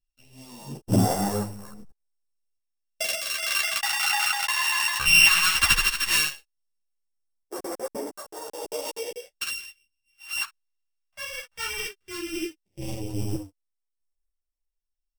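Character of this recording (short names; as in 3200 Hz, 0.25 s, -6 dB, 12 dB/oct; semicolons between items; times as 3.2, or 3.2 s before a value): a buzz of ramps at a fixed pitch in blocks of 16 samples; phasing stages 2, 0.16 Hz, lowest notch 360–2600 Hz; random-step tremolo; a shimmering, thickened sound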